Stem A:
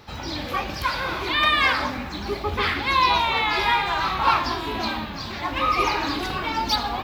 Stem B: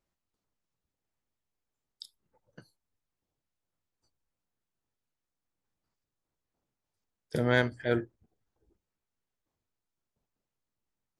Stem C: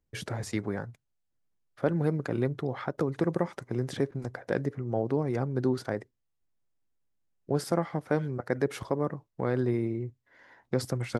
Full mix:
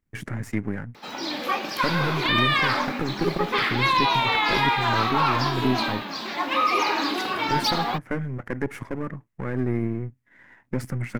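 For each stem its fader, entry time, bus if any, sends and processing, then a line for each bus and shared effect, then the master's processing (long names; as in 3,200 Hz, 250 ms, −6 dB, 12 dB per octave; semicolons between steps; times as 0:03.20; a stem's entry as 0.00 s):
+1.0 dB, 0.95 s, no send, high-pass filter 210 Hz 24 dB per octave; brickwall limiter −13.5 dBFS, peak gain reduction 6 dB
−6.0 dB, 0.00 s, no send, elliptic band-stop filter 100–1,100 Hz
+2.0 dB, 0.00 s, no send, gain on one half-wave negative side −12 dB; octave-band graphic EQ 125/250/500/2,000/4,000 Hz +5/+8/−4/+10/−10 dB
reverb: not used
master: no processing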